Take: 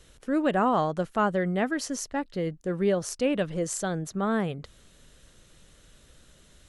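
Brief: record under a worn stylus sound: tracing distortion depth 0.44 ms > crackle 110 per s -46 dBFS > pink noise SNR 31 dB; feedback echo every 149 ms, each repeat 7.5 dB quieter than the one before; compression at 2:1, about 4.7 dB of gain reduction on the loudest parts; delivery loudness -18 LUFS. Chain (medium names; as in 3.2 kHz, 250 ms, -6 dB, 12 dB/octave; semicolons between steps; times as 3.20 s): compression 2:1, threshold -28 dBFS; feedback delay 149 ms, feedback 42%, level -7.5 dB; tracing distortion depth 0.44 ms; crackle 110 per s -46 dBFS; pink noise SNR 31 dB; trim +12.5 dB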